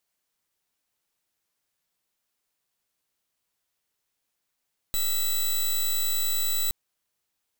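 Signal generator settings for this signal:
pulse wave 3,950 Hz, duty 10% −25 dBFS 1.77 s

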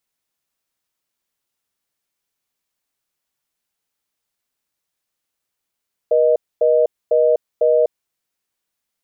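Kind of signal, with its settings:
call progress tone reorder tone, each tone −14 dBFS 1.80 s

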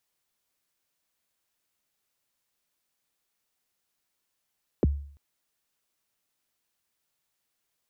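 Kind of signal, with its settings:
synth kick length 0.34 s, from 540 Hz, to 71 Hz, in 23 ms, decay 0.54 s, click off, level −16 dB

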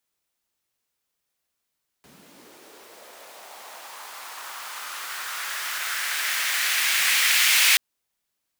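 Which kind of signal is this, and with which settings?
filter sweep on noise pink, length 5.73 s highpass, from 140 Hz, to 2,300 Hz, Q 2, linear, gain ramp +37.5 dB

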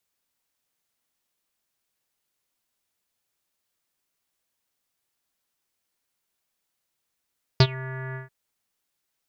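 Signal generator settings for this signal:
subtractive voice square C3 24 dB per octave, low-pass 1,800 Hz, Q 7.4, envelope 1.5 octaves, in 0.15 s, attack 4.2 ms, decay 0.06 s, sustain −22 dB, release 0.14 s, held 0.55 s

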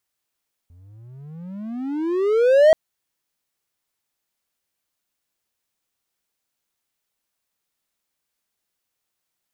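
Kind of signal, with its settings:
pitch glide with a swell triangle, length 2.03 s, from 83.6 Hz, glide +35.5 semitones, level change +38 dB, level −6 dB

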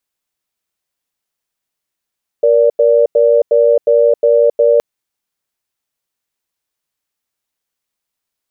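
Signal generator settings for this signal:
tone pair in a cadence 471 Hz, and 582 Hz, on 0.27 s, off 0.09 s, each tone −9.5 dBFS 2.37 s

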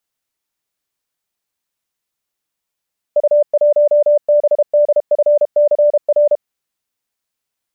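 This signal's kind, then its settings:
Morse code "U1BDFCR" 32 words per minute 590 Hz −7.5 dBFS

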